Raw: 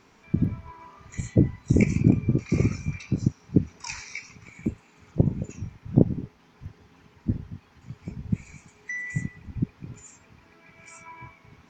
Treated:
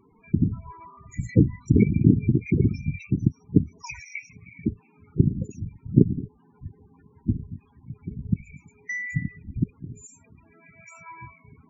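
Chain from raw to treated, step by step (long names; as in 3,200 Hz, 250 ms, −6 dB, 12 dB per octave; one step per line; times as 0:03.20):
spectral peaks only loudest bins 16
0:01.29–0:02.52: one half of a high-frequency compander encoder only
level +2 dB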